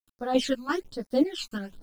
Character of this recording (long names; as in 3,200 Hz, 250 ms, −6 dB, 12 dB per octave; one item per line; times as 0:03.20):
a quantiser's noise floor 10 bits, dither none
phaser sweep stages 12, 1.2 Hz, lowest notch 570–2,800 Hz
chopped level 2.9 Hz, depth 60%, duty 55%
a shimmering, thickened sound